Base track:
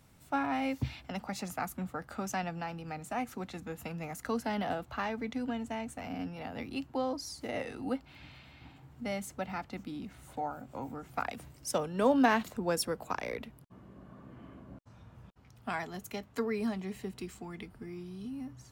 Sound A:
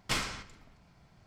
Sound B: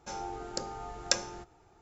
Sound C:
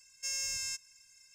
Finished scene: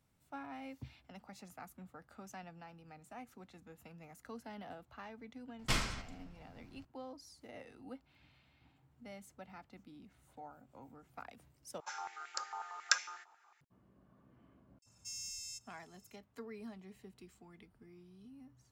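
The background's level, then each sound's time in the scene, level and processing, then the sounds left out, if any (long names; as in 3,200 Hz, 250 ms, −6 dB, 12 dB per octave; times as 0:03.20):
base track −15 dB
0:05.59: mix in A −3 dB + low-shelf EQ 140 Hz +8 dB
0:11.80: overwrite with B −5 dB + high-pass on a step sequencer 11 Hz 1,000–2,200 Hz
0:14.82: mix in C −9 dB + inverse Chebyshev band-stop filter 230–1,300 Hz, stop band 50 dB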